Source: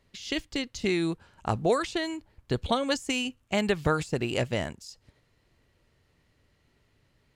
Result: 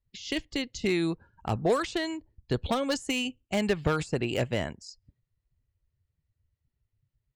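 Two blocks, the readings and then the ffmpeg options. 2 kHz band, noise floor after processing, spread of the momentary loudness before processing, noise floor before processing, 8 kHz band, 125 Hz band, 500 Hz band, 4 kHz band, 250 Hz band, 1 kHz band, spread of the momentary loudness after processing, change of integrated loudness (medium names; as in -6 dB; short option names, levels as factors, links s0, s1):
-1.0 dB, -84 dBFS, 9 LU, -69 dBFS, -1.0 dB, 0.0 dB, -0.5 dB, -1.5 dB, 0.0 dB, -2.0 dB, 9 LU, -0.5 dB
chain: -filter_complex "[0:a]afftdn=nr=25:nf=-52,acrossover=split=500[s0][s1];[s1]asoftclip=type=hard:threshold=0.0562[s2];[s0][s2]amix=inputs=2:normalize=0"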